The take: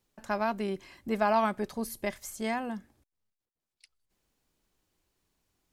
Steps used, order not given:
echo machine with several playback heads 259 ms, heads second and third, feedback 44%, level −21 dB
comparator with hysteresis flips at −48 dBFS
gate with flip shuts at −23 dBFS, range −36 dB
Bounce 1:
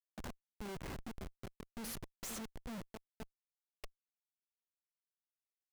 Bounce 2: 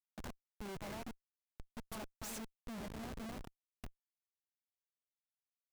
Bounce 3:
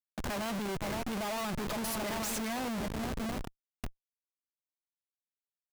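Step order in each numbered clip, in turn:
gate with flip, then echo machine with several playback heads, then comparator with hysteresis
echo machine with several playback heads, then gate with flip, then comparator with hysteresis
echo machine with several playback heads, then comparator with hysteresis, then gate with flip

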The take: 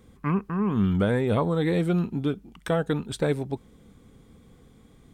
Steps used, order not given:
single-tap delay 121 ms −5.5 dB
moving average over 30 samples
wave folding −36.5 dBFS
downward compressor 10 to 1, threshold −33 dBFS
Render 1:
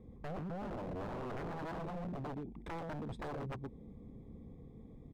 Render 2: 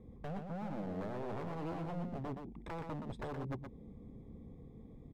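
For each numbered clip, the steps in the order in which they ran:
moving average, then downward compressor, then single-tap delay, then wave folding
downward compressor, then moving average, then wave folding, then single-tap delay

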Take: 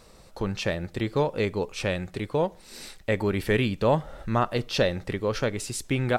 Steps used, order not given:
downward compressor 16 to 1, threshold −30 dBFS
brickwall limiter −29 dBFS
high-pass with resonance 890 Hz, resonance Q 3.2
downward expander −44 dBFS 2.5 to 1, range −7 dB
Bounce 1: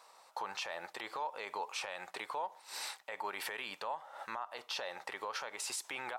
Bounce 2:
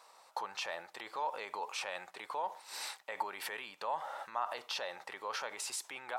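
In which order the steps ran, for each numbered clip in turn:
high-pass with resonance, then downward compressor, then downward expander, then brickwall limiter
brickwall limiter, then downward compressor, then high-pass with resonance, then downward expander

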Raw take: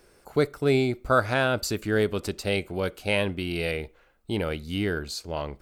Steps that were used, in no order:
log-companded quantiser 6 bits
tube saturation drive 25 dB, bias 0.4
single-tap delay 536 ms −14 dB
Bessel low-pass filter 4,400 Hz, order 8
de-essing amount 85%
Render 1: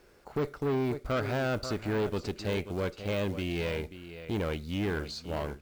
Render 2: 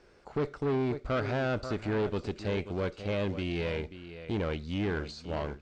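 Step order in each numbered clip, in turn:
Bessel low-pass filter, then log-companded quantiser, then de-essing, then single-tap delay, then tube saturation
log-companded quantiser, then de-essing, then single-tap delay, then tube saturation, then Bessel low-pass filter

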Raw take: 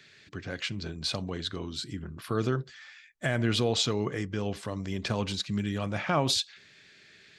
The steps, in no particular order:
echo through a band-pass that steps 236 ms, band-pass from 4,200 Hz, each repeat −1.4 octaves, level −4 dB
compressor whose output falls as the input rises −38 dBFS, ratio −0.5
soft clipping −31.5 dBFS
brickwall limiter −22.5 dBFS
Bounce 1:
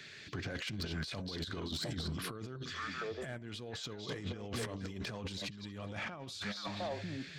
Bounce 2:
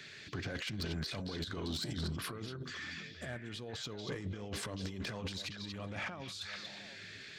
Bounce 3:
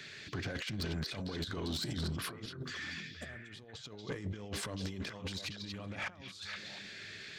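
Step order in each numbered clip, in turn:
echo through a band-pass that steps, then brickwall limiter, then compressor whose output falls as the input rises, then soft clipping
brickwall limiter, then compressor whose output falls as the input rises, then echo through a band-pass that steps, then soft clipping
compressor whose output falls as the input rises, then echo through a band-pass that steps, then soft clipping, then brickwall limiter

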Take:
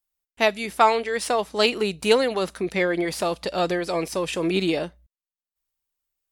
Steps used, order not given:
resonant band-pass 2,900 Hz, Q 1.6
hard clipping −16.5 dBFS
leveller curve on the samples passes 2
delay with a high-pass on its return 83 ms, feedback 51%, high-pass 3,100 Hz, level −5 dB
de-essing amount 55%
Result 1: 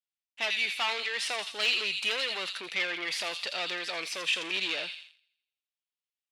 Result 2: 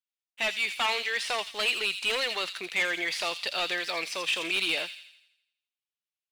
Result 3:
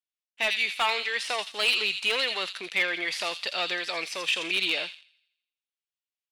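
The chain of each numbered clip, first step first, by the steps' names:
delay with a high-pass on its return, then hard clipping, then leveller curve on the samples, then resonant band-pass, then de-essing
hard clipping, then de-essing, then resonant band-pass, then leveller curve on the samples, then delay with a high-pass on its return
delay with a high-pass on its return, then de-essing, then leveller curve on the samples, then resonant band-pass, then hard clipping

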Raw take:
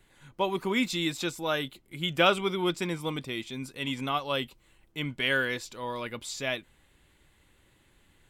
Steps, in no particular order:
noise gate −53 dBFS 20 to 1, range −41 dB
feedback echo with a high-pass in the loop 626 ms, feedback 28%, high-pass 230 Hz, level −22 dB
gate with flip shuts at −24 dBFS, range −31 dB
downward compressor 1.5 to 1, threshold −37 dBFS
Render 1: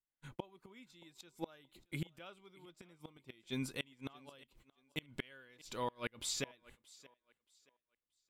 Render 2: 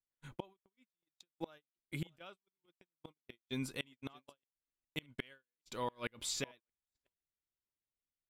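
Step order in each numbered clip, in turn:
noise gate, then gate with flip, then feedback echo with a high-pass in the loop, then downward compressor
gate with flip, then feedback echo with a high-pass in the loop, then downward compressor, then noise gate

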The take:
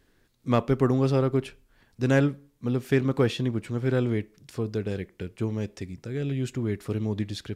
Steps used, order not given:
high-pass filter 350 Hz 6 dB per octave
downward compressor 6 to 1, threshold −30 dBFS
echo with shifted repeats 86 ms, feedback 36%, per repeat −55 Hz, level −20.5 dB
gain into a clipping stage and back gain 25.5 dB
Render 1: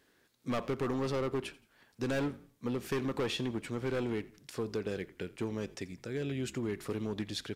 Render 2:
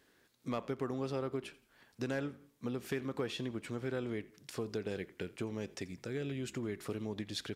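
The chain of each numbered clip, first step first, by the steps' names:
high-pass filter, then gain into a clipping stage and back, then downward compressor, then echo with shifted repeats
downward compressor, then echo with shifted repeats, then high-pass filter, then gain into a clipping stage and back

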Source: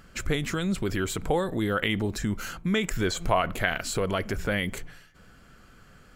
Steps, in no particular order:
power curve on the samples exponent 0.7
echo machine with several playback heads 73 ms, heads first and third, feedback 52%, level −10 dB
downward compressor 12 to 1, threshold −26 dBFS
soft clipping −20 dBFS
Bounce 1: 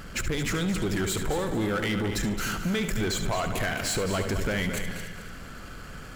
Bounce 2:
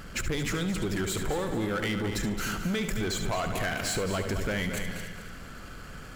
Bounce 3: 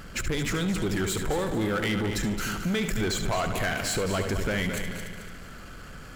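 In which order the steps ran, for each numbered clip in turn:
downward compressor, then power curve on the samples, then echo machine with several playback heads, then soft clipping
soft clipping, then power curve on the samples, then echo machine with several playback heads, then downward compressor
soft clipping, then downward compressor, then echo machine with several playback heads, then power curve on the samples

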